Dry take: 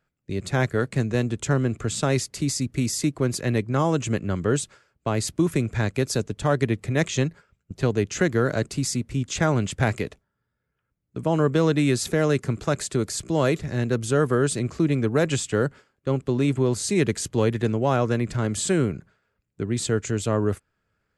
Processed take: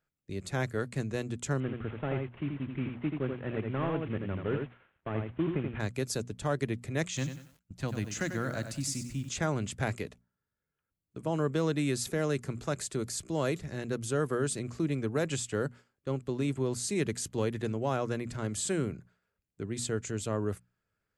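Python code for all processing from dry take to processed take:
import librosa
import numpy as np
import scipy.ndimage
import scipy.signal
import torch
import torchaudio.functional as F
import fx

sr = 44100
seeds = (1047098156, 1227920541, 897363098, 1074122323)

y = fx.chain(x, sr, fx.cvsd(bps=16000),
    fx.echo_single(ms=83, db=-4.5), at=(1.6, 5.8))
y = fx.chain(y, sr, fx.peak_eq(hz=420.0, db=-13.5, octaves=0.36),
    fx.echo_crushed(ms=94, feedback_pct=35, bits=8, wet_db=-9), at=(7.07, 9.29))
y = fx.high_shelf(y, sr, hz=7800.0, db=6.0)
y = fx.hum_notches(y, sr, base_hz=60, count=4)
y = y * 10.0 ** (-9.0 / 20.0)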